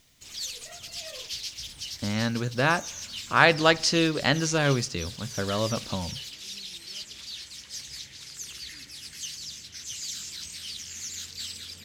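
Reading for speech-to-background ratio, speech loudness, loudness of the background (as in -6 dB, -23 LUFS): 11.5 dB, -25.0 LUFS, -36.5 LUFS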